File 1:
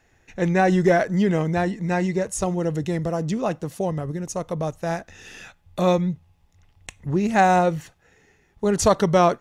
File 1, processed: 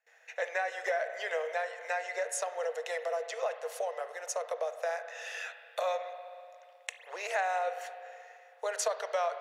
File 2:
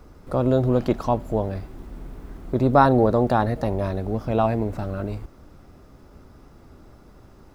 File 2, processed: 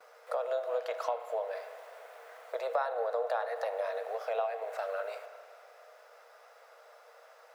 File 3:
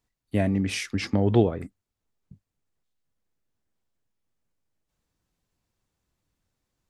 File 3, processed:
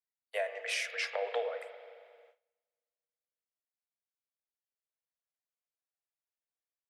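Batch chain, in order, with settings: rippled Chebyshev high-pass 460 Hz, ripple 6 dB; compression 4:1, threshold -35 dBFS; spring tank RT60 2.4 s, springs 32/53 ms, chirp 20 ms, DRR 9 dB; gate with hold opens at -56 dBFS; trim +3.5 dB

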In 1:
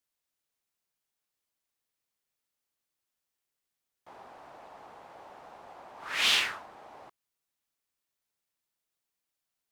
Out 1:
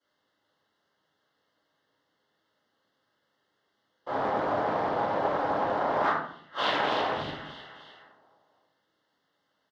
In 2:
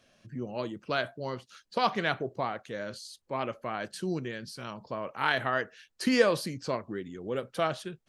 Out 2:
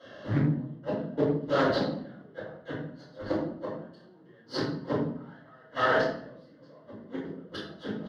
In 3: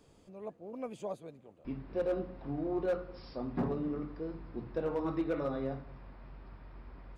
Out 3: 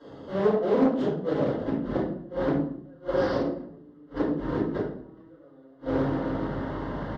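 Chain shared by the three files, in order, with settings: saturation -23.5 dBFS; on a send: feedback delay 303 ms, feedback 53%, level -17 dB; on the sum: compression 5:1, threshold -35 dBFS; in parallel at -7 dB: Schmitt trigger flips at -50.5 dBFS; on the sum: Butterworth band-stop 2.4 kHz, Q 3; inverted gate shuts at -31 dBFS, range -38 dB; high-pass 190 Hz 12 dB/octave; distance through air 280 m; simulated room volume 110 m³, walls mixed, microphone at 4.7 m; loudspeaker Doppler distortion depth 0.26 ms; trim +6.5 dB

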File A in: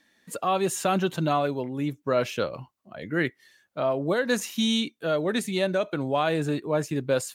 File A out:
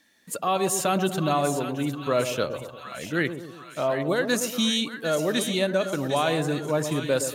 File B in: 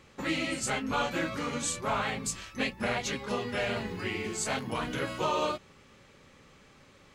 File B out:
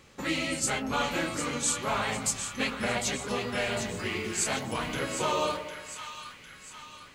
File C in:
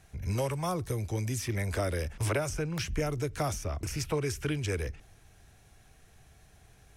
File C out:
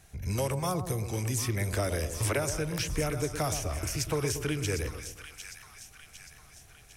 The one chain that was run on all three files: treble shelf 4.9 kHz +7 dB; on a send: two-band feedback delay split 1.1 kHz, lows 118 ms, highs 754 ms, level -8.5 dB

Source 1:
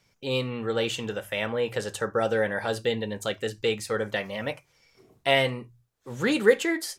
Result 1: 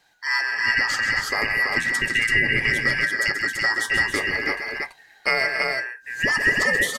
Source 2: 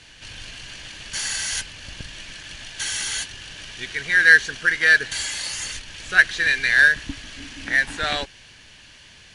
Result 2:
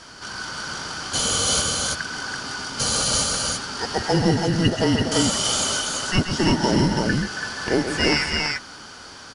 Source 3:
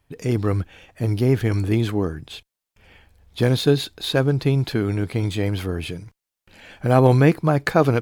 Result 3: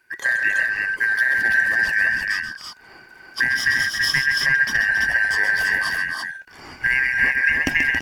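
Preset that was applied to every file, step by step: four frequency bands reordered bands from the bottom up 2143; compression 10:1, threshold -21 dBFS; multi-tap echo 132/158/275/334 ms -8.5/-19.5/-10/-3 dB; trim +4.5 dB

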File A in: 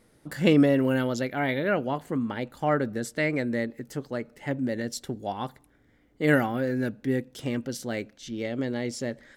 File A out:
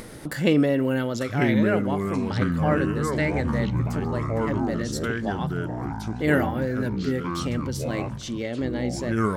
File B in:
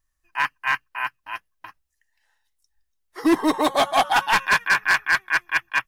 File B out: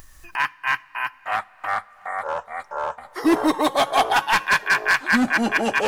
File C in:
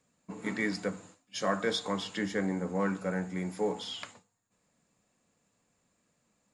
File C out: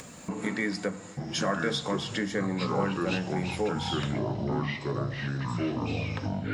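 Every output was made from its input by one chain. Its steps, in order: ever faster or slower copies 789 ms, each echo -5 st, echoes 3; two-slope reverb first 0.42 s, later 4.2 s, from -16 dB, DRR 19.5 dB; upward compressor, threshold -24 dBFS

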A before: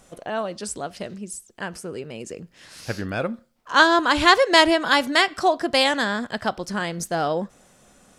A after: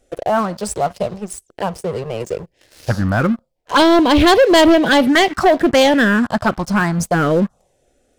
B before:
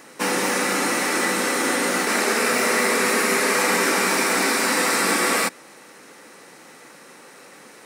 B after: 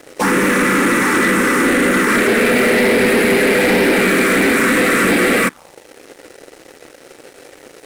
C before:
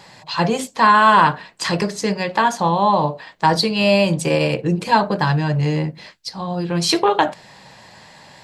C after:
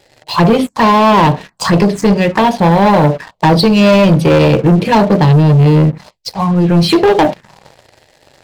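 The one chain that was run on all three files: treble shelf 2 kHz -11 dB; touch-sensitive phaser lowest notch 170 Hz, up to 1.4 kHz, full sweep at -18 dBFS; waveshaping leveller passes 3; trim +5 dB

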